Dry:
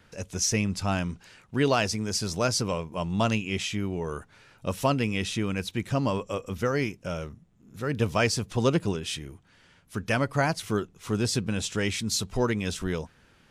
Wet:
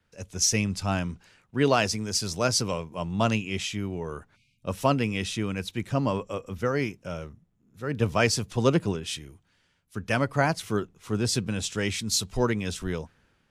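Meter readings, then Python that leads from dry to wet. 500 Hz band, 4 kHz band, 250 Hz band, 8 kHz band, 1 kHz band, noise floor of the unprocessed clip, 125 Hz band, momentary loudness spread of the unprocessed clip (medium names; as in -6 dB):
+0.5 dB, +1.0 dB, 0.0 dB, +2.5 dB, +1.0 dB, -60 dBFS, 0.0 dB, 10 LU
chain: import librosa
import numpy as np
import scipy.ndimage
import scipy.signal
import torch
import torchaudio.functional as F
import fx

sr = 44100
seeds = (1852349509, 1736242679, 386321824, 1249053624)

y = fx.spec_erase(x, sr, start_s=4.36, length_s=0.27, low_hz=260.0, high_hz=2100.0)
y = fx.band_widen(y, sr, depth_pct=40)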